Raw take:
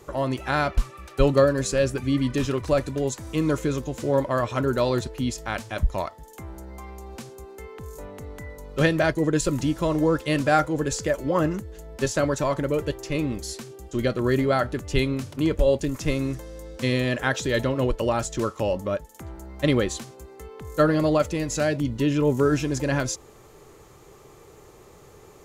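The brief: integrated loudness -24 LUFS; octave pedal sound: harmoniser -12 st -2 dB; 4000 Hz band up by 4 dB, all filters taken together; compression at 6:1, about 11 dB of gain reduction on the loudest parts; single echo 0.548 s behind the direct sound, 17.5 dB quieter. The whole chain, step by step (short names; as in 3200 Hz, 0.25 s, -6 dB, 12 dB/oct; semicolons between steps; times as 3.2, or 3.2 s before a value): bell 4000 Hz +5 dB; compressor 6:1, threshold -26 dBFS; echo 0.548 s -17.5 dB; harmoniser -12 st -2 dB; gain +5.5 dB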